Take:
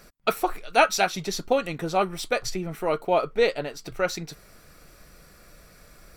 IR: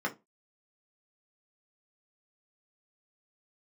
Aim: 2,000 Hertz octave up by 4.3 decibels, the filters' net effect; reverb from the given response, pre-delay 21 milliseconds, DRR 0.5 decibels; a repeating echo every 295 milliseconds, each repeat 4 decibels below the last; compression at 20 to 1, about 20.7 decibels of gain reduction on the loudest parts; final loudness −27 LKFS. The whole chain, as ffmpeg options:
-filter_complex "[0:a]equalizer=frequency=2000:width_type=o:gain=6,acompressor=threshold=-31dB:ratio=20,aecho=1:1:295|590|885|1180|1475|1770|2065|2360|2655:0.631|0.398|0.25|0.158|0.0994|0.0626|0.0394|0.0249|0.0157,asplit=2[link_01][link_02];[1:a]atrim=start_sample=2205,adelay=21[link_03];[link_02][link_03]afir=irnorm=-1:irlink=0,volume=-7.5dB[link_04];[link_01][link_04]amix=inputs=2:normalize=0,volume=5.5dB"

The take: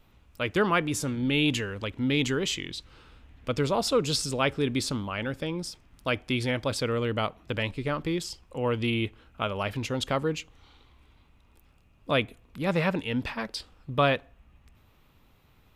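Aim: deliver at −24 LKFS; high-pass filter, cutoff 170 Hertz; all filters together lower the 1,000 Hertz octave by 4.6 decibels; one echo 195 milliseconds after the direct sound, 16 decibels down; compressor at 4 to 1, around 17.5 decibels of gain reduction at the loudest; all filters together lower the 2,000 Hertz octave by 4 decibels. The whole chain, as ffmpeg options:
ffmpeg -i in.wav -af "highpass=170,equalizer=frequency=1000:width_type=o:gain=-5,equalizer=frequency=2000:width_type=o:gain=-4,acompressor=threshold=-43dB:ratio=4,aecho=1:1:195:0.158,volume=20.5dB" out.wav

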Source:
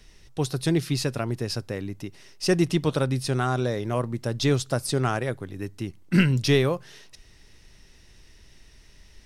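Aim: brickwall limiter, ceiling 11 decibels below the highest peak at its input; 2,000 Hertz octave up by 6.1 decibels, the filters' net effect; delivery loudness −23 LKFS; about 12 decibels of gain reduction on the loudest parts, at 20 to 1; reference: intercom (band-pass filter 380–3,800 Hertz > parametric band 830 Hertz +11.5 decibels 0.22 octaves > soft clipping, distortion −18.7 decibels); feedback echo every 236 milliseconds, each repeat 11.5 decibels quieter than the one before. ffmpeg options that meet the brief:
ffmpeg -i in.wav -af "equalizer=frequency=2000:width_type=o:gain=8,acompressor=threshold=-25dB:ratio=20,alimiter=level_in=1dB:limit=-24dB:level=0:latency=1,volume=-1dB,highpass=380,lowpass=3800,equalizer=frequency=830:width_type=o:width=0.22:gain=11.5,aecho=1:1:236|472|708:0.266|0.0718|0.0194,asoftclip=threshold=-27.5dB,volume=17.5dB" out.wav

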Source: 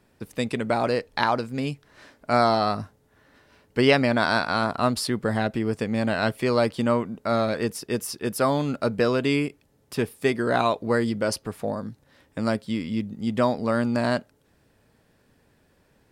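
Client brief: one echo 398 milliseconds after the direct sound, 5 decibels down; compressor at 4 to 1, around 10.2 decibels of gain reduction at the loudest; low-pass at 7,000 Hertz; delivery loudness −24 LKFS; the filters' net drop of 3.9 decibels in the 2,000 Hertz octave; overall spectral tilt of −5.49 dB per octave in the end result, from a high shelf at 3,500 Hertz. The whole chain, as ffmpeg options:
ffmpeg -i in.wav -af "lowpass=7000,equalizer=frequency=2000:width_type=o:gain=-4,highshelf=frequency=3500:gain=-5,acompressor=threshold=-26dB:ratio=4,aecho=1:1:398:0.562,volume=6.5dB" out.wav

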